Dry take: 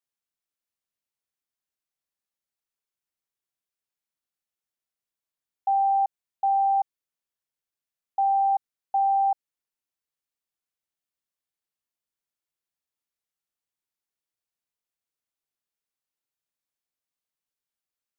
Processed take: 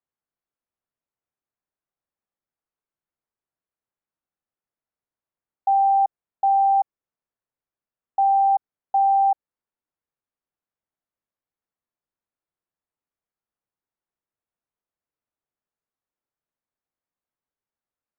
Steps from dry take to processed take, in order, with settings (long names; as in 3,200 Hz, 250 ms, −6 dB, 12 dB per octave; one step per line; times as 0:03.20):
low-pass filter 1,400 Hz
level +4.5 dB